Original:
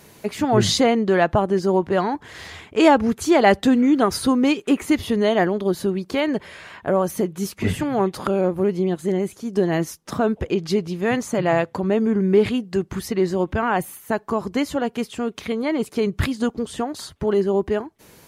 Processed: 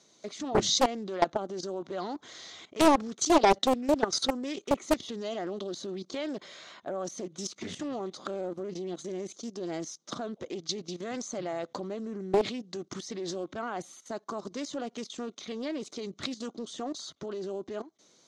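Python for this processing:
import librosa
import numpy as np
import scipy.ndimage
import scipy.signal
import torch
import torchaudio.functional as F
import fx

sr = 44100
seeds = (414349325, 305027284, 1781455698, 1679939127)

y = fx.level_steps(x, sr, step_db=15)
y = fx.cabinet(y, sr, low_hz=290.0, low_slope=12, high_hz=6900.0, hz=(440.0, 900.0, 1700.0, 2600.0, 3800.0, 6300.0), db=(-6, -9, -10, -9, 7, 10))
y = fx.doppler_dist(y, sr, depth_ms=0.84)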